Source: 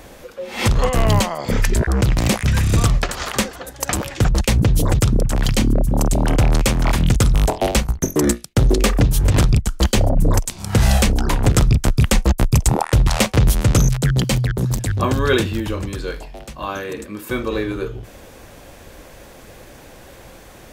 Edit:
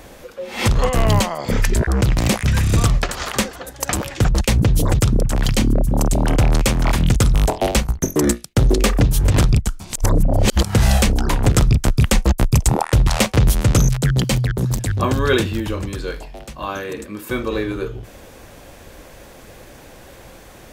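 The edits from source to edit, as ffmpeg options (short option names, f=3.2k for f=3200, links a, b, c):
-filter_complex "[0:a]asplit=3[a][b][c];[a]atrim=end=9.802[d];[b]atrim=start=9.798:end=10.632,asetpts=PTS-STARTPTS,areverse[e];[c]atrim=start=10.628[f];[d][e]acrossfade=d=0.004:c1=hsin:c2=hsin[g];[g][f]acrossfade=d=0.004:c1=hsin:c2=hsin"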